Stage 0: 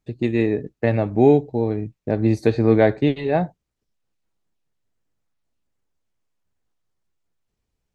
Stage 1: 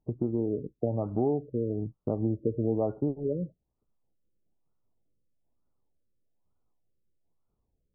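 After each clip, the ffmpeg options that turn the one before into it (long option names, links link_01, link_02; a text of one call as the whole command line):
ffmpeg -i in.wav -af "acompressor=threshold=-28dB:ratio=3,afftfilt=real='re*lt(b*sr/1024,560*pow(1500/560,0.5+0.5*sin(2*PI*1.1*pts/sr)))':imag='im*lt(b*sr/1024,560*pow(1500/560,0.5+0.5*sin(2*PI*1.1*pts/sr)))':win_size=1024:overlap=0.75" out.wav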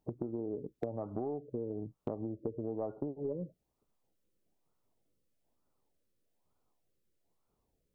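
ffmpeg -i in.wav -af "acompressor=threshold=-36dB:ratio=8,lowshelf=frequency=210:gain=-10.5,aeval=exprs='0.0398*(cos(1*acos(clip(val(0)/0.0398,-1,1)))-cos(1*PI/2))+0.00316*(cos(2*acos(clip(val(0)/0.0398,-1,1)))-cos(2*PI/2))':channel_layout=same,volume=5.5dB" out.wav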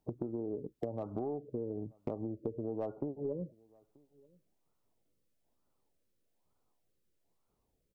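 ffmpeg -i in.wav -filter_complex "[0:a]acrossover=split=520[link_01][link_02];[link_02]volume=36dB,asoftclip=hard,volume=-36dB[link_03];[link_01][link_03]amix=inputs=2:normalize=0,asplit=2[link_04][link_05];[link_05]adelay=932.9,volume=-27dB,highshelf=frequency=4000:gain=-21[link_06];[link_04][link_06]amix=inputs=2:normalize=0" out.wav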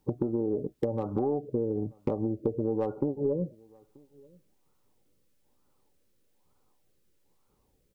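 ffmpeg -i in.wav -af "asuperstop=centerf=670:order=20:qfactor=6.6,volume=9dB" out.wav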